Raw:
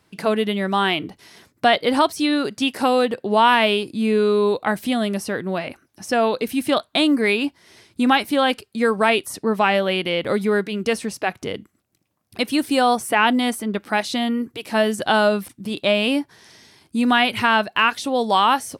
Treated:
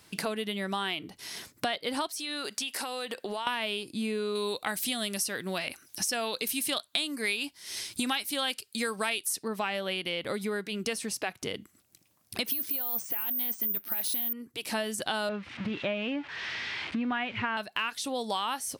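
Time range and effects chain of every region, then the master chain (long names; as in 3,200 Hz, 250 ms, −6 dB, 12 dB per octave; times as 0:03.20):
0:02.07–0:03.47: high-pass filter 700 Hz 6 dB per octave + downward compressor 5 to 1, threshold −28 dBFS
0:04.35–0:09.48: de-essing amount 30% + high-shelf EQ 2,200 Hz +10.5 dB
0:12.46–0:14.33: compressor whose output falls as the input rises −24 dBFS + bad sample-rate conversion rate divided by 3×, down filtered, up zero stuff
0:15.29–0:17.57: spike at every zero crossing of −15 dBFS + low-pass filter 2,400 Hz 24 dB per octave + parametric band 69 Hz +8 dB 2.1 octaves
whole clip: high-shelf EQ 2,500 Hz +11 dB; downward compressor 4 to 1, threshold −32 dBFS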